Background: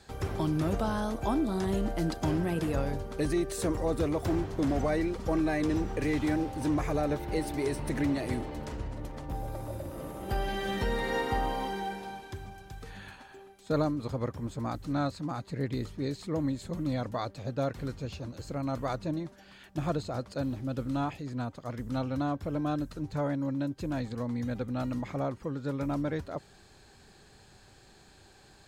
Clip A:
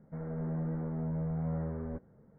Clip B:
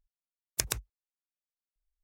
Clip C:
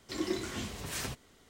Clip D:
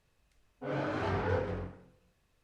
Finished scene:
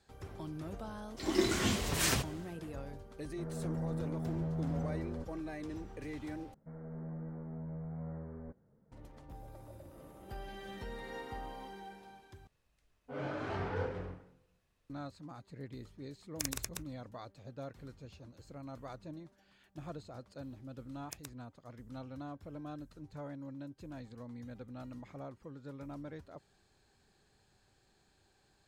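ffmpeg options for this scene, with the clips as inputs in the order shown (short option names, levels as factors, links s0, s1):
-filter_complex "[1:a]asplit=2[s0][s1];[2:a]asplit=2[s2][s3];[0:a]volume=0.2[s4];[3:a]dynaudnorm=f=110:g=5:m=4.47[s5];[s2]aecho=1:1:43.73|236.2:0.891|0.794[s6];[s3]highpass=51[s7];[s4]asplit=3[s8][s9][s10];[s8]atrim=end=6.544[s11];[s1]atrim=end=2.38,asetpts=PTS-STARTPTS,volume=0.376[s12];[s9]atrim=start=8.916:end=12.474[s13];[4:a]atrim=end=2.43,asetpts=PTS-STARTPTS,volume=0.562[s14];[s10]atrim=start=14.896[s15];[s5]atrim=end=1.49,asetpts=PTS-STARTPTS,volume=0.473,afade=t=in:d=0.004:c=hsin,afade=t=out:st=1.486:d=0.004:c=hsin,adelay=1080[s16];[s0]atrim=end=2.38,asetpts=PTS-STARTPTS,volume=0.75,afade=t=in:d=0.004:c=hsin,afade=t=out:st=2.376:d=0.004:c=hsin,adelay=3260[s17];[s6]atrim=end=2.03,asetpts=PTS-STARTPTS,volume=0.335,afade=t=in:d=0.004:c=hsin,afade=t=out:st=2.026:d=0.004:c=hsin,adelay=15810[s18];[s7]atrim=end=2.03,asetpts=PTS-STARTPTS,volume=0.133,afade=t=in:d=0.004:c=hsin,afade=t=out:st=2.026:d=0.004:c=hsin,adelay=20530[s19];[s11][s12]acrossfade=d=0.004:c1=hsin:c2=hsin[s20];[s20][s13]acrossfade=d=0.004:c1=hsin:c2=hsin[s21];[s21][s14]acrossfade=d=0.004:c1=hsin:c2=hsin[s22];[s22][s15]acrossfade=d=0.004:c1=hsin:c2=hsin[s23];[s23][s16][s17][s18][s19]amix=inputs=5:normalize=0"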